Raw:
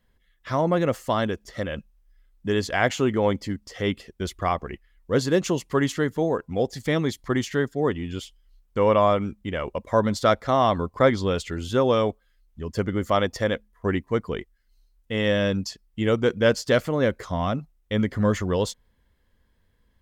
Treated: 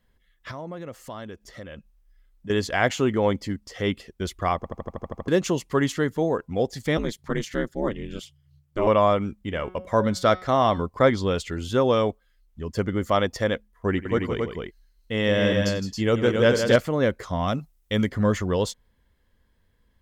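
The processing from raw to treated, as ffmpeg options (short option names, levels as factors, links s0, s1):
-filter_complex "[0:a]asettb=1/sr,asplit=3[s0][s1][s2];[s0]atrim=end=0.514[s3];[s1]atrim=start=0.51:end=2.5,asetpts=PTS-STARTPTS,afade=t=in:d=0.004:c=qsin,afade=t=out:st=1.986:d=0.004:c=qsin,acompressor=threshold=0.00631:ratio=2:attack=3.2:release=140:knee=1:detection=peak[s4];[s2]atrim=start=2.496[s5];[s3][s4]acrossfade=d=0.004:c1=hsin:c2=qsin[s6];[s6][s5]acrossfade=d=0.004:c1=qsin:c2=hsin,asettb=1/sr,asplit=3[s7][s8][s9];[s7]atrim=end=6.974[s10];[s8]atrim=start=6.97:end=8.87,asetpts=PTS-STARTPTS,afade=t=in:d=0.004:c=qsin,afade=t=out:st=1.896:d=0.004:c=qsin,aeval=exprs='val(0)*sin(2*PI*110*n/s)':c=same[s11];[s9]atrim=start=8.866[s12];[s10][s11]acrossfade=d=0.004:c1=hsin:c2=qsin[s13];[s13][s12]acrossfade=d=0.004:c1=qsin:c2=hsin,asettb=1/sr,asplit=3[s14][s15][s16];[s14]atrim=end=9.384[s17];[s15]atrim=start=9.38:end=10.82,asetpts=PTS-STARTPTS,afade=t=in:d=0.004:c=qsin,afade=t=out:st=1.436:d=0.004:c=qsin,bandreject=f=183.8:t=h:w=4,bandreject=f=367.6:t=h:w=4,bandreject=f=551.4:t=h:w=4,bandreject=f=735.2:t=h:w=4,bandreject=f=919:t=h:w=4,bandreject=f=1102.8:t=h:w=4,bandreject=f=1286.6:t=h:w=4,bandreject=f=1470.4:t=h:w=4,bandreject=f=1654.2:t=h:w=4,bandreject=f=1838:t=h:w=4,bandreject=f=2021.8:t=h:w=4,bandreject=f=2205.6:t=h:w=4,bandreject=f=2389.4:t=h:w=4,bandreject=f=2573.2:t=h:w=4,bandreject=f=2757:t=h:w=4,bandreject=f=2940.8:t=h:w=4,bandreject=f=3124.6:t=h:w=4,bandreject=f=3308.4:t=h:w=4,bandreject=f=3492.2:t=h:w=4,bandreject=f=3676:t=h:w=4,bandreject=f=3859.8:t=h:w=4,bandreject=f=4043.6:t=h:w=4,bandreject=f=4227.4:t=h:w=4,bandreject=f=4411.2:t=h:w=4,bandreject=f=4595:t=h:w=4,bandreject=f=4778.8:t=h:w=4,bandreject=f=4962.6:t=h:w=4,bandreject=f=5146.4:t=h:w=4,bandreject=f=5330.2:t=h:w=4,bandreject=f=5514:t=h:w=4,bandreject=f=5697.8:t=h:w=4[s18];[s16]atrim=start=10.816[s19];[s17][s18]acrossfade=d=0.004:c1=hsin:c2=qsin[s20];[s20][s19]acrossfade=d=0.004:c1=qsin:c2=hsin,asettb=1/sr,asplit=3[s21][s22][s23];[s21]atrim=end=13.894[s24];[s22]atrim=start=13.89:end=16.76,asetpts=PTS-STARTPTS,afade=t=in:d=0.004:c=qsin,afade=t=out:st=2.866:d=0.004:c=qsin,aecho=1:1:90|162|272:0.158|0.422|0.631,atrim=end_sample=126567[s25];[s23]atrim=start=16.756[s26];[s24][s25]acrossfade=d=0.004:c1=hsin:c2=qsin[s27];[s27][s26]acrossfade=d=0.004:c1=qsin:c2=hsin,asettb=1/sr,asplit=3[s28][s29][s30];[s28]atrim=end=17.484[s31];[s29]atrim=start=17.48:end=18.09,asetpts=PTS-STARTPTS,afade=t=in:d=0.004:c=qsin,afade=t=out:st=0.606:d=0.004:c=qsin,highshelf=f=3900:g=10[s32];[s30]atrim=start=18.086[s33];[s31][s32]acrossfade=d=0.004:c1=hsin:c2=qsin[s34];[s34][s33]acrossfade=d=0.004:c1=qsin:c2=hsin,asplit=10[s35][s36][s37][s38][s39][s40][s41][s42][s43][s44];[s35]atrim=end=4.642[s45];[s36]atrim=start=4.558:end=4.642[s46];[s37]atrim=start=4.558:end=4.642[s47];[s38]atrim=start=4.558:end=4.642[s48];[s39]atrim=start=4.558:end=4.642[s49];[s40]atrim=start=4.558:end=4.642[s50];[s41]atrim=start=4.558:end=4.642[s51];[s42]atrim=start=4.558:end=4.642[s52];[s43]atrim=start=4.558:end=4.642[s53];[s44]atrim=start=5.278[s54];[s45][s46]acrossfade=d=0.004:c1=hsin:c2=hsin[s55];[s55][s47]acrossfade=d=0.004:c1=hsin:c2=hsin[s56];[s56][s48]acrossfade=d=0.004:c1=hsin:c2=hsin[s57];[s57][s49]acrossfade=d=0.004:c1=hsin:c2=hsin[s58];[s58][s50]acrossfade=d=0.004:c1=hsin:c2=hsin[s59];[s59][s51]acrossfade=d=0.004:c1=hsin:c2=hsin[s60];[s60][s52]acrossfade=d=0.004:c1=hsin:c2=hsin[s61];[s61][s53]acrossfade=d=0.004:c1=hsin:c2=hsin[s62];[s62][s54]acrossfade=d=0.004:c1=hsin:c2=hsin"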